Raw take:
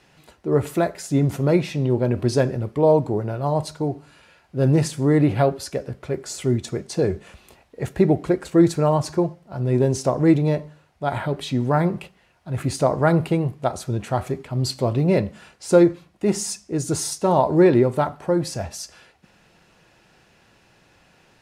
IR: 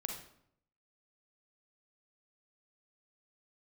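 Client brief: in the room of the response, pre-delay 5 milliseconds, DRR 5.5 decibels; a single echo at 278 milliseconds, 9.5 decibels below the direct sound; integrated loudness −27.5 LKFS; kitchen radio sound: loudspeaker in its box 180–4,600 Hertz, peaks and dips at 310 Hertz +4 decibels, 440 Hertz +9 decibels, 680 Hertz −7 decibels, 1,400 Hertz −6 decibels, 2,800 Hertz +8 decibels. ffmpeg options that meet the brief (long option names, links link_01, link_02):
-filter_complex "[0:a]aecho=1:1:278:0.335,asplit=2[link_01][link_02];[1:a]atrim=start_sample=2205,adelay=5[link_03];[link_02][link_03]afir=irnorm=-1:irlink=0,volume=-5.5dB[link_04];[link_01][link_04]amix=inputs=2:normalize=0,highpass=180,equalizer=frequency=310:width_type=q:width=4:gain=4,equalizer=frequency=440:width_type=q:width=4:gain=9,equalizer=frequency=680:width_type=q:width=4:gain=-7,equalizer=frequency=1400:width_type=q:width=4:gain=-6,equalizer=frequency=2800:width_type=q:width=4:gain=8,lowpass=frequency=4600:width=0.5412,lowpass=frequency=4600:width=1.3066,volume=-9.5dB"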